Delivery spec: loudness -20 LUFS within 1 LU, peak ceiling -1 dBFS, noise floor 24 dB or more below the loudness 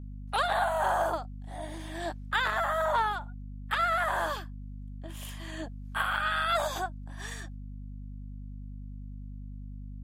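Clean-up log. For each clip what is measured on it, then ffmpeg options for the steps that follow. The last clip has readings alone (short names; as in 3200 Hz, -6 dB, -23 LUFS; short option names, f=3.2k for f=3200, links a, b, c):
hum 50 Hz; harmonics up to 250 Hz; hum level -39 dBFS; loudness -30.5 LUFS; peak -15.5 dBFS; loudness target -20.0 LUFS
-> -af "bandreject=f=50:t=h:w=6,bandreject=f=100:t=h:w=6,bandreject=f=150:t=h:w=6,bandreject=f=200:t=h:w=6,bandreject=f=250:t=h:w=6"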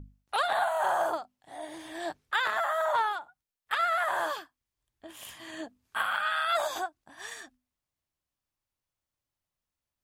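hum none; loudness -29.5 LUFS; peak -16.0 dBFS; loudness target -20.0 LUFS
-> -af "volume=9.5dB"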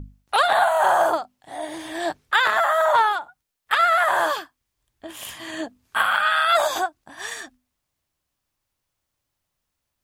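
loudness -20.0 LUFS; peak -6.5 dBFS; noise floor -80 dBFS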